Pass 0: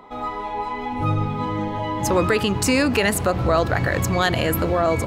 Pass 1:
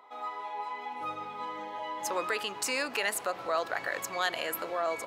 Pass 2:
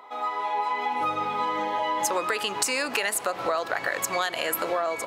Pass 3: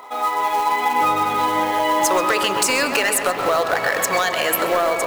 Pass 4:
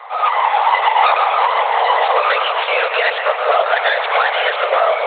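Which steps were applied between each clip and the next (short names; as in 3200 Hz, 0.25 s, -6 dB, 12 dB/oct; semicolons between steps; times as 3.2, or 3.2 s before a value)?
HPF 620 Hz 12 dB/oct; gain -8.5 dB
AGC gain up to 4.5 dB; dynamic EQ 8900 Hz, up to +4 dB, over -44 dBFS, Q 1.3; compressor 10:1, threshold -31 dBFS, peak gain reduction 12.5 dB; gain +8.5 dB
hard clip -19.5 dBFS, distortion -18 dB; short-mantissa float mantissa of 2-bit; darkening echo 0.132 s, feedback 77%, low-pass 3300 Hz, level -8 dB; gain +8 dB
tracing distortion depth 0.39 ms; LPC vocoder at 8 kHz whisper; steep high-pass 450 Hz 72 dB/oct; gain +5.5 dB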